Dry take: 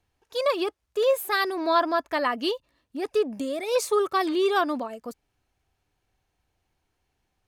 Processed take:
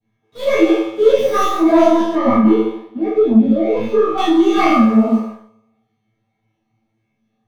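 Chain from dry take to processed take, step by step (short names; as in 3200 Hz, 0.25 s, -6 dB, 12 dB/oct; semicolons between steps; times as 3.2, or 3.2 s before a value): tracing distortion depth 0.24 ms; low shelf 120 Hz +11.5 dB; resonator 110 Hz, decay 0.88 s, harmonics all, mix 100%; reverb RT60 0.60 s, pre-delay 3 ms, DRR -10.5 dB; dynamic EQ 230 Hz, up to +5 dB, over -32 dBFS, Q 0.81; sample leveller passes 1; 2.15–4.18 LPF 1100 Hz 6 dB/oct; maximiser +9.5 dB; detuned doubles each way 59 cents; gain -1 dB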